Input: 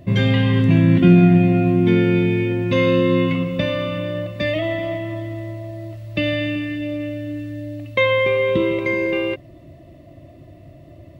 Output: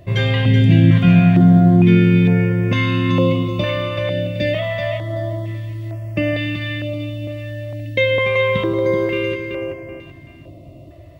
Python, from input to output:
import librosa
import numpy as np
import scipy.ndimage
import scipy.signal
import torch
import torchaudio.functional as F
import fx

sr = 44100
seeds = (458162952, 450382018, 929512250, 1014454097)

y = fx.echo_feedback(x, sr, ms=381, feedback_pct=35, wet_db=-6.0)
y = fx.filter_held_notch(y, sr, hz=2.2, low_hz=220.0, high_hz=3800.0)
y = y * librosa.db_to_amplitude(2.0)